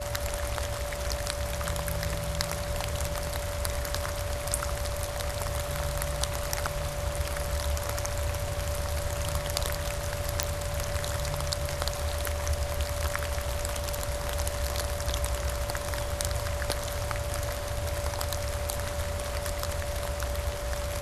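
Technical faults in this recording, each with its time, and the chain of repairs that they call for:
whine 580 Hz -36 dBFS
10.43 s: pop -7 dBFS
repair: de-click; band-stop 580 Hz, Q 30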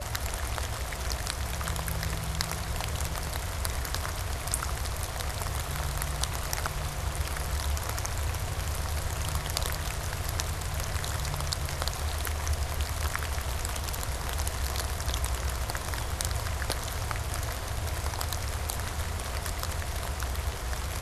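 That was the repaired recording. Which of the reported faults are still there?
nothing left

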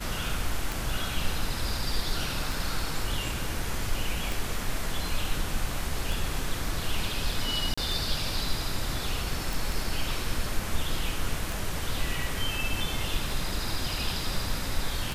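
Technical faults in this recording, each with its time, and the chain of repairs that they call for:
tick 33 1/3 rpm
4.32 s: pop
7.74–7.78 s: dropout 35 ms
9.53 s: pop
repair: de-click; interpolate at 7.74 s, 35 ms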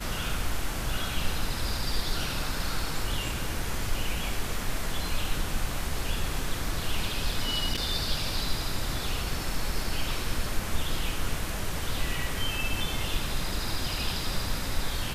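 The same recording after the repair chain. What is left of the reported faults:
nothing left

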